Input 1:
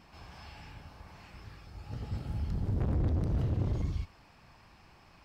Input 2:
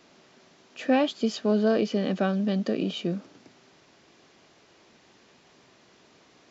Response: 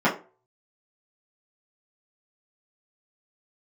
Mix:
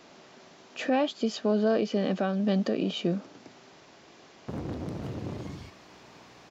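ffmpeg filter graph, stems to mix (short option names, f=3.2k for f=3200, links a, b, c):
-filter_complex "[0:a]aeval=exprs='val(0)+0.00224*(sin(2*PI*60*n/s)+sin(2*PI*2*60*n/s)/2+sin(2*PI*3*60*n/s)/3+sin(2*PI*4*60*n/s)/4+sin(2*PI*5*60*n/s)/5)':c=same,highpass=190,adelay=1650,volume=2dB,asplit=3[a][b][c];[a]atrim=end=2.91,asetpts=PTS-STARTPTS,afade=t=out:st=2.906:d=0.004:c=hsin[d];[b]atrim=start=2.91:end=4.48,asetpts=PTS-STARTPTS,volume=0[e];[c]atrim=start=4.48,asetpts=PTS-STARTPTS,afade=t=in:d=0.004:c=hsin[f];[d][e][f]concat=n=3:v=0:a=1[g];[1:a]equalizer=f=770:t=o:w=1.4:g=3.5,volume=3dB,asplit=2[h][i];[i]apad=whole_len=303993[j];[g][j]sidechaincompress=threshold=-28dB:ratio=8:attack=16:release=284[k];[k][h]amix=inputs=2:normalize=0,alimiter=limit=-17dB:level=0:latency=1:release=465"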